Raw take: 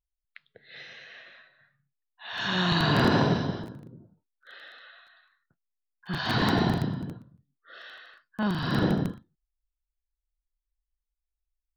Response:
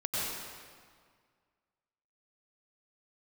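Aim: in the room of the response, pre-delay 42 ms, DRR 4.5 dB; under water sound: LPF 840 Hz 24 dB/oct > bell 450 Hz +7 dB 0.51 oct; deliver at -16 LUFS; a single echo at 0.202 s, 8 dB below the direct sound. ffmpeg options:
-filter_complex "[0:a]aecho=1:1:202:0.398,asplit=2[a][b];[1:a]atrim=start_sample=2205,adelay=42[c];[b][c]afir=irnorm=-1:irlink=0,volume=-11.5dB[d];[a][d]amix=inputs=2:normalize=0,lowpass=f=840:w=0.5412,lowpass=f=840:w=1.3066,equalizer=f=450:t=o:w=0.51:g=7,volume=9.5dB"

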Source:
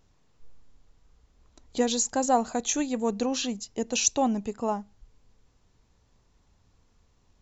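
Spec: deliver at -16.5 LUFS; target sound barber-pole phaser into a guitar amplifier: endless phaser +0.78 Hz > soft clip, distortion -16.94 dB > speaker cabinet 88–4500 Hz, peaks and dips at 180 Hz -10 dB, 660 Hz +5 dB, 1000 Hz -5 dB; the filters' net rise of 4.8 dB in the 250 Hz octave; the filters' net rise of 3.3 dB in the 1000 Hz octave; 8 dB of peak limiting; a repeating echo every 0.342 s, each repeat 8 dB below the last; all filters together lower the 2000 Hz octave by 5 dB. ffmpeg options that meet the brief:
-filter_complex "[0:a]equalizer=f=250:t=o:g=7,equalizer=f=1k:t=o:g=4.5,equalizer=f=2k:t=o:g=-8.5,alimiter=limit=-16.5dB:level=0:latency=1,aecho=1:1:342|684|1026|1368|1710:0.398|0.159|0.0637|0.0255|0.0102,asplit=2[a][b];[b]afreqshift=0.78[c];[a][c]amix=inputs=2:normalize=1,asoftclip=threshold=-22.5dB,highpass=88,equalizer=f=180:t=q:w=4:g=-10,equalizer=f=660:t=q:w=4:g=5,equalizer=f=1k:t=q:w=4:g=-5,lowpass=f=4.5k:w=0.5412,lowpass=f=4.5k:w=1.3066,volume=17dB"

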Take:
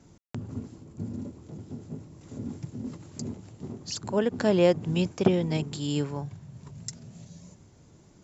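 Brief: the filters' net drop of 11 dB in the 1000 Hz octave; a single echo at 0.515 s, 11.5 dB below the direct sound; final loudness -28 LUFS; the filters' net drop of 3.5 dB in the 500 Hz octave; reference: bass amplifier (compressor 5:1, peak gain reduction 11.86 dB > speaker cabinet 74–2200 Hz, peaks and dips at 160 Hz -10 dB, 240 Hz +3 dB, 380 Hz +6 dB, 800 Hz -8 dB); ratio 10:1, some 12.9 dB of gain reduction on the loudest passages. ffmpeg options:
-af "equalizer=f=500:t=o:g=-7,equalizer=f=1k:t=o:g=-7,acompressor=threshold=-32dB:ratio=10,aecho=1:1:515:0.266,acompressor=threshold=-42dB:ratio=5,highpass=f=74:w=0.5412,highpass=f=74:w=1.3066,equalizer=f=160:t=q:w=4:g=-10,equalizer=f=240:t=q:w=4:g=3,equalizer=f=380:t=q:w=4:g=6,equalizer=f=800:t=q:w=4:g=-8,lowpass=f=2.2k:w=0.5412,lowpass=f=2.2k:w=1.3066,volume=20dB"

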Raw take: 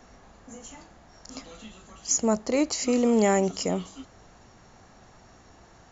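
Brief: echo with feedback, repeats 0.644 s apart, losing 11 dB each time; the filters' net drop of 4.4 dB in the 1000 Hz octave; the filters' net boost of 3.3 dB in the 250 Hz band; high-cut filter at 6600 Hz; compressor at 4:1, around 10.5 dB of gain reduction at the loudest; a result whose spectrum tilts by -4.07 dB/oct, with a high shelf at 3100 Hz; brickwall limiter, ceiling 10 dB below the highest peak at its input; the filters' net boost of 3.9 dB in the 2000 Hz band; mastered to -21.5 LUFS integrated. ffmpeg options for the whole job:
-af "lowpass=6.6k,equalizer=f=250:t=o:g=4,equalizer=f=1k:t=o:g=-7.5,equalizer=f=2k:t=o:g=8.5,highshelf=f=3.1k:g=-7,acompressor=threshold=-29dB:ratio=4,alimiter=level_in=5dB:limit=-24dB:level=0:latency=1,volume=-5dB,aecho=1:1:644|1288|1932:0.282|0.0789|0.0221,volume=18.5dB"

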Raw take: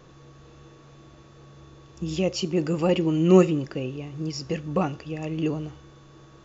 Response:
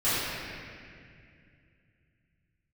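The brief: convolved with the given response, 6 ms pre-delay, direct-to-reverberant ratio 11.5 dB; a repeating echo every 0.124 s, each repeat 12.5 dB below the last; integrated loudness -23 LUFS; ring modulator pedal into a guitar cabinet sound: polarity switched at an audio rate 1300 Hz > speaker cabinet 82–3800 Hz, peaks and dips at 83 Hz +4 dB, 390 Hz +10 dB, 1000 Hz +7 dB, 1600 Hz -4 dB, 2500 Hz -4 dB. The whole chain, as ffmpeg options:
-filter_complex "[0:a]aecho=1:1:124|248|372:0.237|0.0569|0.0137,asplit=2[a][b];[1:a]atrim=start_sample=2205,adelay=6[c];[b][c]afir=irnorm=-1:irlink=0,volume=-26dB[d];[a][d]amix=inputs=2:normalize=0,aeval=exprs='val(0)*sgn(sin(2*PI*1300*n/s))':c=same,highpass=82,equalizer=f=83:t=q:w=4:g=4,equalizer=f=390:t=q:w=4:g=10,equalizer=f=1k:t=q:w=4:g=7,equalizer=f=1.6k:t=q:w=4:g=-4,equalizer=f=2.5k:t=q:w=4:g=-4,lowpass=f=3.8k:w=0.5412,lowpass=f=3.8k:w=1.3066,volume=-1.5dB"

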